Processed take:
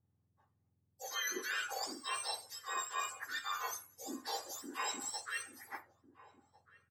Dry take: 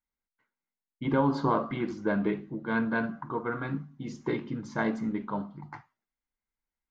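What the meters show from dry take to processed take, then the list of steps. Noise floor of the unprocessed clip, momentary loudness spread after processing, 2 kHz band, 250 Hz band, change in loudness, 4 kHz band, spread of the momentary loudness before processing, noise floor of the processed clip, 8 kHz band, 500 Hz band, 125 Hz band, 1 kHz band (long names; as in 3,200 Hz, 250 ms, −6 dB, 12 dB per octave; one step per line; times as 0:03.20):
below −85 dBFS, 9 LU, −4.5 dB, −23.0 dB, −9.0 dB, +9.0 dB, 10 LU, −79 dBFS, can't be measured, −17.5 dB, below −35 dB, −7.5 dB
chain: frequency axis turned over on the octave scale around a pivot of 1,300 Hz
high-shelf EQ 3,300 Hz −11 dB
reversed playback
downward compressor 6 to 1, threshold −40 dBFS, peak gain reduction 10.5 dB
reversed playback
slap from a distant wall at 240 metres, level −17 dB
level +4.5 dB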